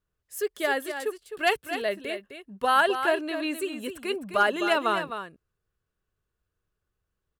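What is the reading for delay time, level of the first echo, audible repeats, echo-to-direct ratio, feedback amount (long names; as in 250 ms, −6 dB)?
258 ms, −9.0 dB, 1, −9.0 dB, repeats not evenly spaced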